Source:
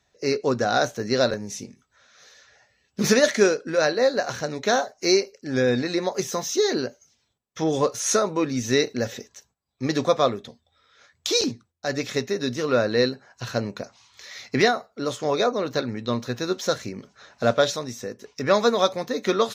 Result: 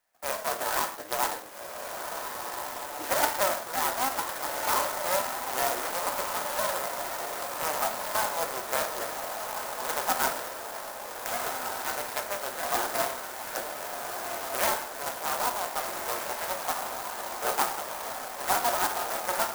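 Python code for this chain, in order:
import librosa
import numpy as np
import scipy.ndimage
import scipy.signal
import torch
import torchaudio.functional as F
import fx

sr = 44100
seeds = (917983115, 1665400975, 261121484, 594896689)

y = fx.cycle_switch(x, sr, every=2, mode='inverted')
y = scipy.signal.sosfilt(scipy.signal.butter(2, 780.0, 'highpass', fs=sr, output='sos'), y)
y = fx.env_lowpass_down(y, sr, base_hz=2200.0, full_db=-22.5)
y = fx.echo_diffused(y, sr, ms=1524, feedback_pct=62, wet_db=-5.0)
y = np.repeat(scipy.signal.resample_poly(y, 1, 6), 6)[:len(y)]
y = scipy.signal.sosfilt(scipy.signal.butter(2, 9200.0, 'lowpass', fs=sr, output='sos'), y)
y = fx.rev_gated(y, sr, seeds[0], gate_ms=200, shape='falling', drr_db=4.0)
y = fx.clock_jitter(y, sr, seeds[1], jitter_ms=0.084)
y = F.gain(torch.from_numpy(y), -4.0).numpy()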